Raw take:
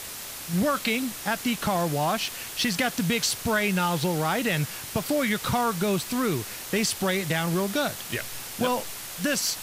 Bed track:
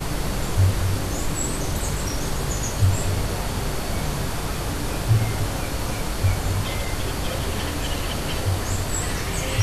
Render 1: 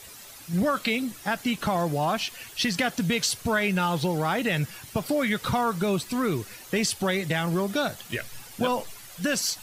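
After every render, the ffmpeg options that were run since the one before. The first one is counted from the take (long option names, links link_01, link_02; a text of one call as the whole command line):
ffmpeg -i in.wav -af "afftdn=noise_reduction=11:noise_floor=-38" out.wav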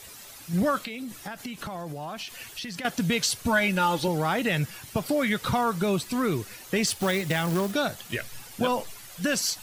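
ffmpeg -i in.wav -filter_complex "[0:a]asettb=1/sr,asplit=3[link_01][link_02][link_03];[link_01]atrim=end=0.814[link_04];[link_02]atrim=start=0.81:end=2.85,asetpts=PTS-STARTPTS,afade=type=in:duration=0.004:curve=qsin,afade=type=out:start_time=2.036:duration=0.004:curve=qsin,acompressor=threshold=-32dB:ratio=8:attack=3.2:release=140:knee=1:detection=peak[link_05];[link_03]atrim=start=2.846[link_06];[link_04][link_05]acrossfade=duration=0.004:curve1=hsin:curve2=qsin[link_07];[link_07][link_06]acrossfade=duration=0.004:curve1=qsin:curve2=hsin,asettb=1/sr,asplit=3[link_08][link_09][link_10];[link_08]atrim=end=3.444[link_11];[link_09]atrim=start=3.44:end=4.08,asetpts=PTS-STARTPTS,afade=type=in:duration=0.004:curve=qsin,afade=type=out:start_time=0.636:duration=0.004:curve=qsin,aecho=1:1:3.5:0.65,atrim=end_sample=28224[link_12];[link_10]atrim=start=4.076[link_13];[link_11][link_12]acrossfade=duration=0.004:curve1=hsin:curve2=qsin[link_14];[link_14][link_13]acrossfade=duration=0.004:curve1=qsin:curve2=hsin,asettb=1/sr,asplit=3[link_15][link_16][link_17];[link_15]atrim=end=6.874[link_18];[link_16]atrim=start=6.87:end=7.72,asetpts=PTS-STARTPTS,afade=type=in:duration=0.004:curve=qsin,afade=type=out:start_time=0.846:duration=0.004:curve=qsin,acrusher=bits=3:mode=log:mix=0:aa=0.000001[link_19];[link_17]atrim=start=7.716[link_20];[link_18][link_19]acrossfade=duration=0.004:curve1=hsin:curve2=qsin[link_21];[link_21][link_20]acrossfade=duration=0.004:curve1=qsin:curve2=hsin" out.wav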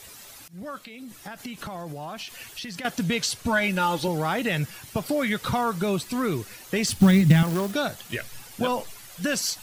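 ffmpeg -i in.wav -filter_complex "[0:a]asettb=1/sr,asplit=3[link_01][link_02][link_03];[link_01]atrim=end=3.034[link_04];[link_02]atrim=start=3.03:end=3.64,asetpts=PTS-STARTPTS,afade=type=in:duration=0.004:curve=qsin,afade=type=out:start_time=0.606:duration=0.004:curve=qsin,highshelf=frequency=11000:gain=-7[link_05];[link_03]atrim=start=3.636[link_06];[link_04][link_05]acrossfade=duration=0.004:curve1=hsin:curve2=qsin[link_07];[link_07][link_06]acrossfade=duration=0.004:curve1=qsin:curve2=hsin,asettb=1/sr,asplit=3[link_08][link_09][link_10];[link_08]atrim=end=6.894[link_11];[link_09]atrim=start=6.89:end=7.43,asetpts=PTS-STARTPTS,afade=type=in:duration=0.004:curve=qsin,afade=type=out:start_time=0.536:duration=0.004:curve=qsin,lowshelf=frequency=310:width_type=q:width=1.5:gain=12[link_12];[link_10]atrim=start=7.426[link_13];[link_11][link_12]acrossfade=duration=0.004:curve1=hsin:curve2=qsin[link_14];[link_14][link_13]acrossfade=duration=0.004:curve1=qsin:curve2=hsin,asplit=2[link_15][link_16];[link_15]atrim=end=0.48,asetpts=PTS-STARTPTS,afade=type=out:start_time=0.476:duration=0.004:curve=hsin:silence=0.0630957[link_17];[link_16]atrim=start=0.48,asetpts=PTS-STARTPTS,afade=type=in:duration=1:silence=0.0630957[link_18];[link_17][link_18]concat=n=2:v=0:a=1" out.wav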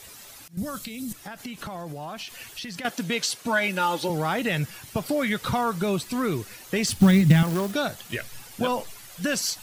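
ffmpeg -i in.wav -filter_complex "[0:a]asettb=1/sr,asplit=3[link_01][link_02][link_03];[link_01]atrim=end=0.574[link_04];[link_02]atrim=start=0.57:end=1.13,asetpts=PTS-STARTPTS,afade=type=in:duration=0.004:curve=qsin,afade=type=out:start_time=0.556:duration=0.004:curve=qsin,bass=frequency=250:gain=15,treble=frequency=4000:gain=15[link_05];[link_03]atrim=start=1.126[link_06];[link_04][link_05]acrossfade=duration=0.004:curve1=hsin:curve2=qsin[link_07];[link_07][link_06]acrossfade=duration=0.004:curve1=qsin:curve2=hsin,asettb=1/sr,asplit=3[link_08][link_09][link_10];[link_08]atrim=end=2.894[link_11];[link_09]atrim=start=2.89:end=4.1,asetpts=PTS-STARTPTS,afade=type=in:duration=0.004:curve=qsin,afade=type=out:start_time=1.206:duration=0.004:curve=qsin,highpass=230[link_12];[link_10]atrim=start=4.096[link_13];[link_11][link_12]acrossfade=duration=0.004:curve1=hsin:curve2=qsin[link_14];[link_14][link_13]acrossfade=duration=0.004:curve1=qsin:curve2=hsin" out.wav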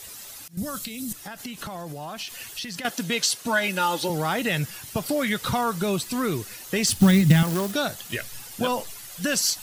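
ffmpeg -i in.wav -af "highshelf=frequency=3700:gain=6,bandreject=frequency=2300:width=28" out.wav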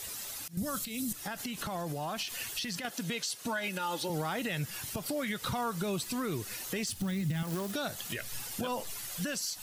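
ffmpeg -i in.wav -af "acompressor=threshold=-31dB:ratio=3,alimiter=level_in=0.5dB:limit=-24dB:level=0:latency=1:release=114,volume=-0.5dB" out.wav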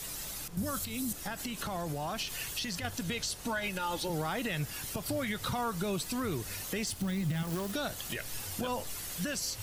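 ffmpeg -i in.wav -i bed.wav -filter_complex "[1:a]volume=-25dB[link_01];[0:a][link_01]amix=inputs=2:normalize=0" out.wav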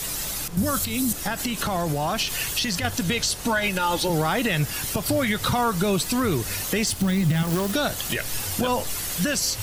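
ffmpeg -i in.wav -af "volume=11dB" out.wav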